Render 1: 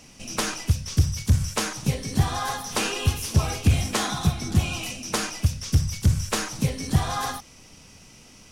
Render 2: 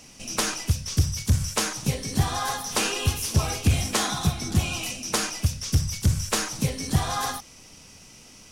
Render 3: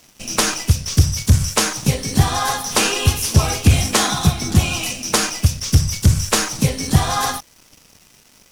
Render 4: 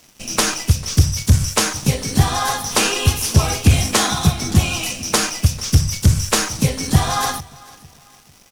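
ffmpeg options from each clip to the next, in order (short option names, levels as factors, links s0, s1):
-af "bass=f=250:g=-2,treble=f=4000:g=3"
-af "aeval=exprs='sgn(val(0))*max(abs(val(0))-0.00447,0)':c=same,volume=2.66"
-af "aecho=1:1:447|894|1341:0.075|0.0277|0.0103"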